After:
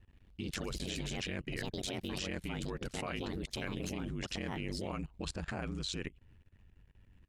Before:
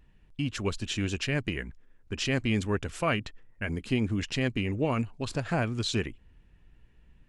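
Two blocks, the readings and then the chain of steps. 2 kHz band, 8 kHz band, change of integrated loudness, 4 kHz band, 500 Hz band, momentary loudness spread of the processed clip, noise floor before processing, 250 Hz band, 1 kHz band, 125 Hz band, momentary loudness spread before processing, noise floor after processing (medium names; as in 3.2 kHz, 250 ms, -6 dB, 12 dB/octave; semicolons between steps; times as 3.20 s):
-9.0 dB, -4.0 dB, -9.0 dB, -5.5 dB, -9.5 dB, 3 LU, -60 dBFS, -9.5 dB, -9.0 dB, -10.5 dB, 9 LU, -64 dBFS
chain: ever faster or slower copies 94 ms, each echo +4 st, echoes 2, each echo -6 dB; ring modulator 47 Hz; level held to a coarse grid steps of 21 dB; trim +3.5 dB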